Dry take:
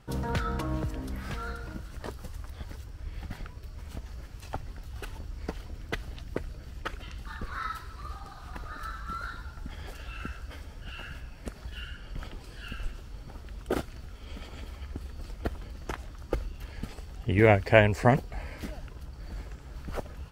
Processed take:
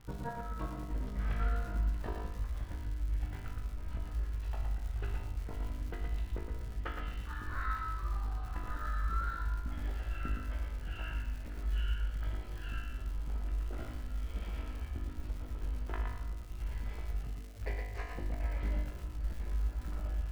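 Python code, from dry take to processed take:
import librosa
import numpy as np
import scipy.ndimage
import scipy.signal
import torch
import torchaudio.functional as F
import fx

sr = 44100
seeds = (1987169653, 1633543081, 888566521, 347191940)

y = scipy.signal.sosfilt(scipy.signal.butter(2, 2600.0, 'lowpass', fs=sr, output='sos'), x)
y = fx.low_shelf(y, sr, hz=72.0, db=10.5)
y = fx.over_compress(y, sr, threshold_db=-31.0, ratio=-0.5)
y = fx.comb_fb(y, sr, f0_hz=50.0, decay_s=0.87, harmonics='all', damping=0.0, mix_pct=90)
y = fx.dmg_crackle(y, sr, seeds[0], per_s=140.0, level_db=-48.0)
y = fx.doubler(y, sr, ms=17.0, db=-7)
y = y + 10.0 ** (-5.0 / 20.0) * np.pad(y, (int(116 * sr / 1000.0), 0))[:len(y)]
y = y * 10.0 ** (4.0 / 20.0)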